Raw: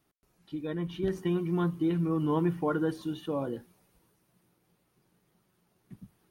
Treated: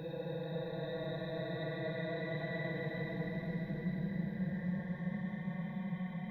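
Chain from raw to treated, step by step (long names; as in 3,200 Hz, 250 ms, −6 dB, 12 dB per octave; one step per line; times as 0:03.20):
compressor whose output falls as the input rises −35 dBFS, ratio −1
phaser with its sweep stopped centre 1,800 Hz, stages 8
pitch vibrato 1.7 Hz 98 cents
extreme stretch with random phases 42×, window 0.05 s, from 0:00.66
echo whose low-pass opens from repeat to repeat 263 ms, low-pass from 200 Hz, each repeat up 2 octaves, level −3 dB
level −3.5 dB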